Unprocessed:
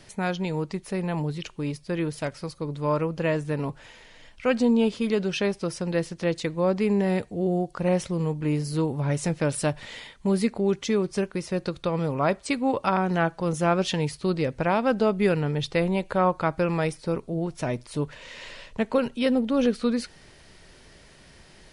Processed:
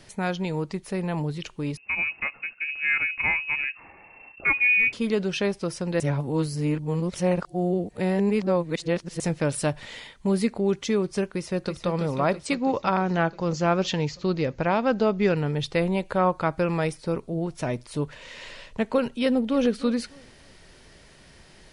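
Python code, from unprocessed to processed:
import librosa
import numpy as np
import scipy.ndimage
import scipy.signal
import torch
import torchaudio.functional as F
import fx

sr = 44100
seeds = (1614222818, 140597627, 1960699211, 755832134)

y = fx.freq_invert(x, sr, carrier_hz=2700, at=(1.77, 4.93))
y = fx.echo_throw(y, sr, start_s=11.31, length_s=0.57, ms=330, feedback_pct=70, wet_db=-8.0)
y = fx.resample_bad(y, sr, factor=3, down='none', up='filtered', at=(12.54, 15.37))
y = fx.echo_throw(y, sr, start_s=19.18, length_s=0.46, ms=300, feedback_pct=30, wet_db=-17.5)
y = fx.edit(y, sr, fx.reverse_span(start_s=6.0, length_s=3.2), tone=tone)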